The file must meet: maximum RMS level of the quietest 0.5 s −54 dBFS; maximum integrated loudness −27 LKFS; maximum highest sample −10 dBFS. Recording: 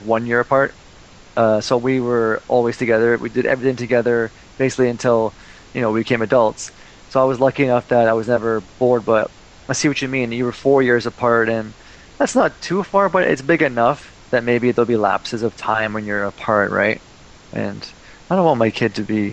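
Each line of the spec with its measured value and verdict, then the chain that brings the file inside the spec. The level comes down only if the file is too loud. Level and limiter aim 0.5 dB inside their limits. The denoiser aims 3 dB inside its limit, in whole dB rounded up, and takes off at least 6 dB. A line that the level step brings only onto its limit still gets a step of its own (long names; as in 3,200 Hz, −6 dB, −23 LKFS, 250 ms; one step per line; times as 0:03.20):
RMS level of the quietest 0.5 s −44 dBFS: out of spec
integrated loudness −18.0 LKFS: out of spec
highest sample −3.0 dBFS: out of spec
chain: broadband denoise 6 dB, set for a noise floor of −44 dBFS
level −9.5 dB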